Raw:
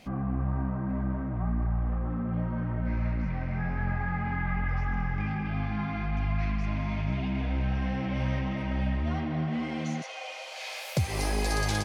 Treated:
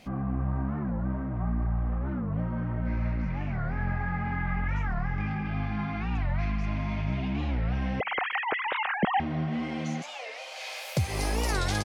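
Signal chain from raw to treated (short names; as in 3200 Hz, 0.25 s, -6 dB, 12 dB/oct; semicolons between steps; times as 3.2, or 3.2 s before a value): 8–9.2 sine-wave speech; speakerphone echo 0.14 s, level -28 dB; record warp 45 rpm, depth 250 cents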